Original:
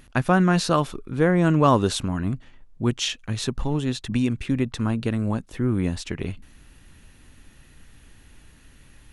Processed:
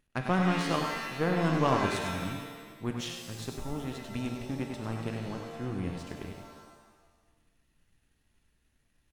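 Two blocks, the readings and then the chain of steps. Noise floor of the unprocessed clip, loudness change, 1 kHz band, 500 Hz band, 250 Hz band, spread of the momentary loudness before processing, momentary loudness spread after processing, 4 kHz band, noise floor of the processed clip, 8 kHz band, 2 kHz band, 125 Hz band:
−52 dBFS, −8.5 dB, −6.5 dB, −8.5 dB, −10.0 dB, 11 LU, 14 LU, −9.0 dB, −73 dBFS, −10.5 dB, −5.5 dB, −10.0 dB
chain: power curve on the samples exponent 1.4
single-tap delay 99 ms −6.5 dB
reverb with rising layers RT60 1.2 s, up +7 semitones, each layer −2 dB, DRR 6 dB
level −7 dB

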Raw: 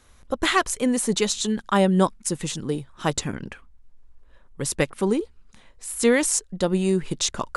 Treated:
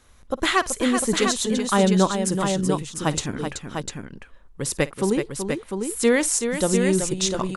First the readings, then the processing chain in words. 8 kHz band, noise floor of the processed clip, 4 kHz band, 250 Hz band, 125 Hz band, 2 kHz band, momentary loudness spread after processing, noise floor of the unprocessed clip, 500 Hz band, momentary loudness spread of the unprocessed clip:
+1.5 dB, −50 dBFS, +1.5 dB, +1.5 dB, +1.5 dB, +1.5 dB, 12 LU, −53 dBFS, +1.5 dB, 13 LU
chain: multi-tap delay 53/379/700 ms −20/−7.5/−6 dB

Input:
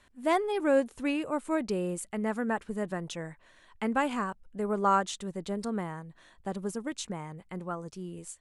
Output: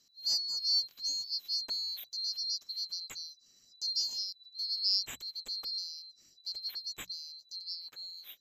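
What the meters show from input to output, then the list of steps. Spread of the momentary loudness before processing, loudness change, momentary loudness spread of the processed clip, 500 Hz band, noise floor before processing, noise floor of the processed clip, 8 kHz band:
14 LU, −2.0 dB, 14 LU, below −35 dB, −62 dBFS, −66 dBFS, +0.5 dB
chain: neighbouring bands swapped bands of 4,000 Hz
mains-hum notches 60/120/180 Hz
level −5.5 dB

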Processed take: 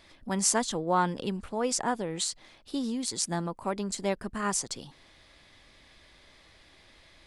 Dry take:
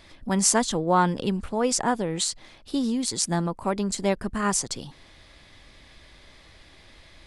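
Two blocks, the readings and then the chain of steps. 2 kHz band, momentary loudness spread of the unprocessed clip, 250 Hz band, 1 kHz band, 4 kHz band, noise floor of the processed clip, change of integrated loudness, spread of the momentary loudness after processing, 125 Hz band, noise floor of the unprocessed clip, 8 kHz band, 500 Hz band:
−4.5 dB, 8 LU, −6.5 dB, −4.5 dB, −4.5 dB, −59 dBFS, −5.0 dB, 9 LU, −7.0 dB, −53 dBFS, −4.5 dB, −5.0 dB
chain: low-shelf EQ 170 Hz −5.5 dB
level −4.5 dB

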